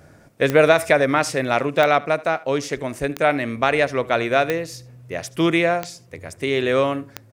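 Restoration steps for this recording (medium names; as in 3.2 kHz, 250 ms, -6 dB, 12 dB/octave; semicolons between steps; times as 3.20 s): de-click; inverse comb 76 ms -21 dB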